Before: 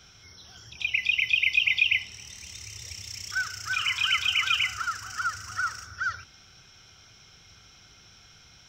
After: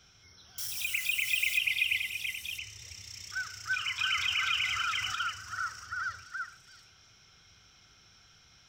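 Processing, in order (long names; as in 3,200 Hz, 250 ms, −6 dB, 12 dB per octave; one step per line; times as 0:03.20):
0:00.58–0:01.58: spike at every zero crossing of −22 dBFS
echo through a band-pass that steps 335 ms, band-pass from 1,500 Hz, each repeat 1.4 octaves, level −1.5 dB
0:03.99–0:05.15: envelope flattener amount 50%
level −7 dB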